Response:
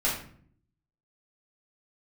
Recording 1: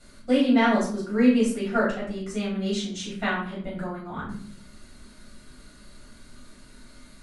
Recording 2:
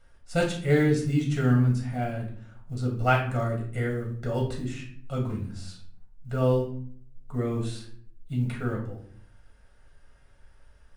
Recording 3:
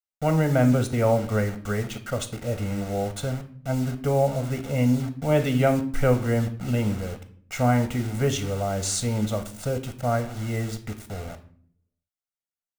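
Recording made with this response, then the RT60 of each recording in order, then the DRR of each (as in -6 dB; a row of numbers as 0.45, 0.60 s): 1; 0.55, 0.55, 0.55 s; -8.0, -1.0, 7.5 dB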